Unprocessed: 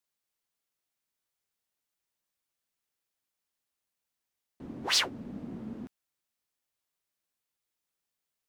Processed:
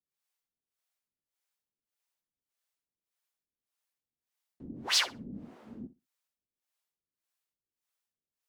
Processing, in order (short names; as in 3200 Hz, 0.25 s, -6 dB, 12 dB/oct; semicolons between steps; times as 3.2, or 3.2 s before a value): harmonic tremolo 1.7 Hz, depth 100%, crossover 480 Hz; flutter echo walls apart 10.6 m, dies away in 0.23 s